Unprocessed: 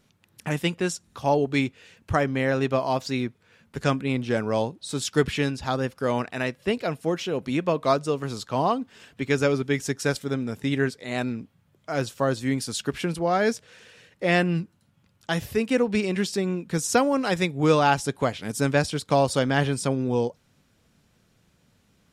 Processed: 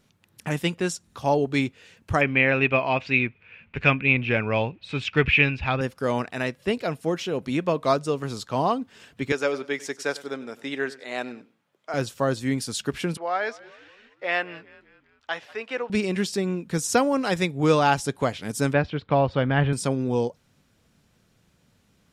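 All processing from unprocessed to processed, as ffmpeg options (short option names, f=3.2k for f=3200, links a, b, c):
-filter_complex "[0:a]asettb=1/sr,asplit=3[a][b][c];[a]atrim=end=2.214[d];[b]atrim=start=2.21:end=5.81,asetpts=PTS-STARTPTS,afade=t=in:d=0.004:c=qsin,afade=t=out:st=3.596:d=0.004:c=qsin,asubboost=boost=3.5:cutoff=130,lowpass=f=2.5k:t=q:w=7.9[e];[c]atrim=start=5.806[f];[d][e]acrossfade=d=0.004:c1=hsin:c2=qsin[g];[g][f]acrossfade=d=0.004:c1=qsin:c2=hsin,asettb=1/sr,asplit=3[h][i][j];[h]atrim=end=9.324[k];[i]atrim=start=9.32:end=11.94,asetpts=PTS-STARTPTS,afade=t=in:d=0.004:c=qsin,afade=t=out:st=2.616:d=0.004:c=qsin,highpass=410,highshelf=f=7.7k:g=-10,aecho=1:1:97|194:0.119|0.0333,atrim=end_sample=115542[l];[j]atrim=start=11.936[m];[k][l]acrossfade=d=0.004:c1=hsin:c2=qsin[n];[n][m]acrossfade=d=0.004:c1=qsin:c2=hsin,asettb=1/sr,asplit=3[o][p][q];[o]atrim=end=13.174[r];[p]atrim=start=13.17:end=15.9,asetpts=PTS-STARTPTS,afade=t=in:d=0.004:c=qsin,afade=t=out:st=2.726:d=0.004:c=qsin,highpass=700,lowpass=3.1k,asplit=5[s][t][u][v][w];[t]adelay=193,afreqshift=-70,volume=-21dB[x];[u]adelay=386,afreqshift=-140,volume=-27dB[y];[v]adelay=579,afreqshift=-210,volume=-33dB[z];[w]adelay=772,afreqshift=-280,volume=-39.1dB[aa];[s][x][y][z][aa]amix=inputs=5:normalize=0,atrim=end_sample=120393[ab];[q]atrim=start=15.896[ac];[r][ab]acrossfade=d=0.004:c1=hsin:c2=qsin[ad];[ad][ac]acrossfade=d=0.004:c1=qsin:c2=hsin,asettb=1/sr,asplit=3[ae][af][ag];[ae]atrim=end=18.734[ah];[af]atrim=start=18.73:end=19.73,asetpts=PTS-STARTPTS,afade=t=in:d=0.004:c=qsin,afade=t=out:st=0.996:d=0.004:c=qsin,lowpass=f=3k:w=0.5412,lowpass=f=3k:w=1.3066,asubboost=boost=6.5:cutoff=160[ai];[ag]atrim=start=19.726[aj];[ah][ai]acrossfade=d=0.004:c1=hsin:c2=qsin[ak];[ak][aj]acrossfade=d=0.004:c1=qsin:c2=hsin"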